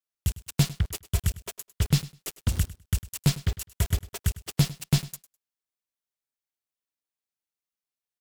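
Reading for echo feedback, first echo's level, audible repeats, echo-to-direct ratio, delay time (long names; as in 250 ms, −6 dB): 17%, −18.0 dB, 2, −18.0 dB, 102 ms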